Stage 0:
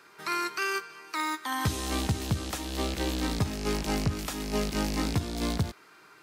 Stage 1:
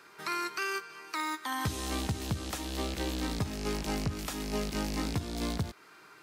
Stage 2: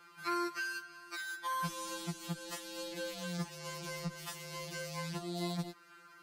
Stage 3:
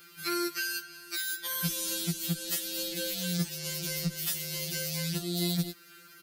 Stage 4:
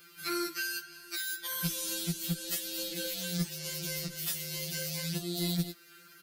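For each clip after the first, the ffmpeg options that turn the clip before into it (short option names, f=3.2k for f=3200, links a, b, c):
-af "acompressor=threshold=-36dB:ratio=1.5"
-af "afftfilt=real='re*2.83*eq(mod(b,8),0)':imag='im*2.83*eq(mod(b,8),0)':win_size=2048:overlap=0.75,volume=-2.5dB"
-af "firequalizer=gain_entry='entry(170,0);entry(500,-5);entry(990,-20);entry(1400,-6);entry(3500,3);entry(5100,3);entry(7700,3);entry(14000,15)':delay=0.05:min_phase=1,volume=8dB"
-af "aeval=exprs='0.141*(cos(1*acos(clip(val(0)/0.141,-1,1)))-cos(1*PI/2))+0.0158*(cos(2*acos(clip(val(0)/0.141,-1,1)))-cos(2*PI/2))+0.00112*(cos(6*acos(clip(val(0)/0.141,-1,1)))-cos(6*PI/2))+0.002*(cos(8*acos(clip(val(0)/0.141,-1,1)))-cos(8*PI/2))':c=same,flanger=delay=1.8:depth=6.6:regen=-63:speed=0.77:shape=sinusoidal,volume=2dB"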